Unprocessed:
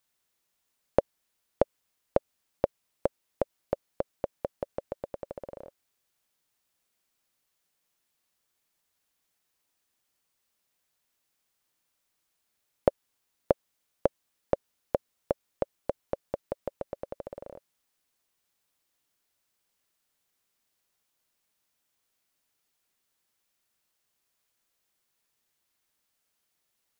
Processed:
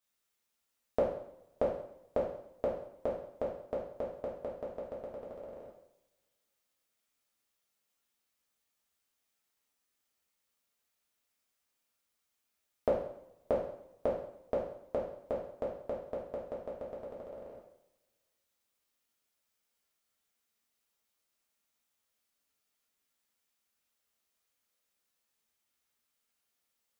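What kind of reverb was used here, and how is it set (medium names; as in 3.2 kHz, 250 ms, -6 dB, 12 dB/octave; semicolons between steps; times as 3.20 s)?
two-slope reverb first 0.65 s, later 2 s, from -25 dB, DRR -6 dB; trim -10.5 dB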